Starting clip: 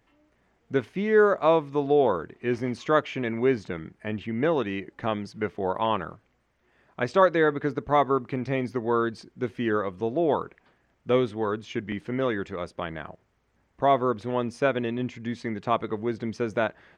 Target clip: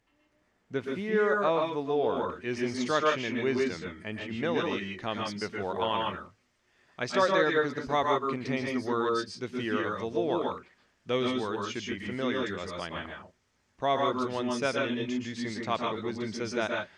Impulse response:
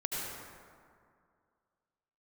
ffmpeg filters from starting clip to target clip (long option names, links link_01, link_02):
-filter_complex "[0:a]asetnsamples=nb_out_samples=441:pad=0,asendcmd='2.17 equalizer g 13.5',equalizer=frequency=5800:width=0.51:gain=5.5[link_01];[1:a]atrim=start_sample=2205,afade=type=out:start_time=0.15:duration=0.01,atrim=end_sample=7056,asetrate=27783,aresample=44100[link_02];[link_01][link_02]afir=irnorm=-1:irlink=0,volume=-8.5dB"